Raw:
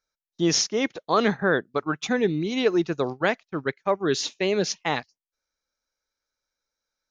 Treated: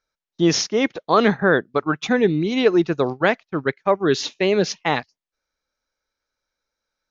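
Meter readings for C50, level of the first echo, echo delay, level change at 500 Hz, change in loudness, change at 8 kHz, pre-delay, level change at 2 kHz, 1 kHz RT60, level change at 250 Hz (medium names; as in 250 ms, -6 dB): no reverb, no echo, no echo, +5.5 dB, +4.5 dB, -0.5 dB, no reverb, +4.5 dB, no reverb, +5.5 dB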